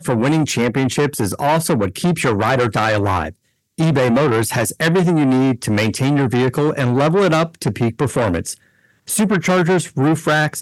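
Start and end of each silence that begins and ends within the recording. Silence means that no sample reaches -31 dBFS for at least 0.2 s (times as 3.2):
3.31–3.78
8.54–9.08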